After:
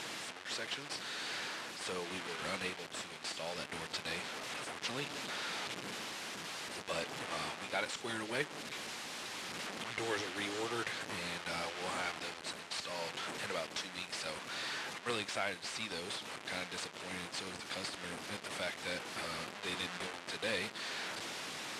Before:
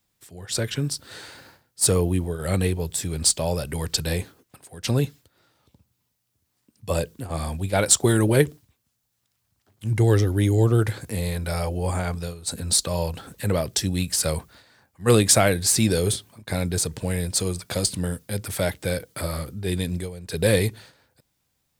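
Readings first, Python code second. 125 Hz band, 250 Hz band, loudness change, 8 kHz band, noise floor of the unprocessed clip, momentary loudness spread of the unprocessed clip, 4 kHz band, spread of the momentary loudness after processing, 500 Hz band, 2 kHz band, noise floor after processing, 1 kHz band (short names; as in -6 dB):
-29.5 dB, -20.0 dB, -16.0 dB, -20.5 dB, -74 dBFS, 12 LU, -9.0 dB, 5 LU, -17.5 dB, -5.0 dB, -49 dBFS, -8.0 dB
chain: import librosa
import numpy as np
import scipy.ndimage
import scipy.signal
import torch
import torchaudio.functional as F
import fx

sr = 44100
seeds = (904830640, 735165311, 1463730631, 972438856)

y = fx.delta_mod(x, sr, bps=64000, step_db=-29.5)
y = np.diff(y, prepend=0.0)
y = fx.rider(y, sr, range_db=10, speed_s=0.5)
y = fx.tube_stage(y, sr, drive_db=34.0, bias=0.75)
y = fx.bandpass_edges(y, sr, low_hz=170.0, high_hz=2800.0)
y = y * 10.0 ** (10.0 / 20.0)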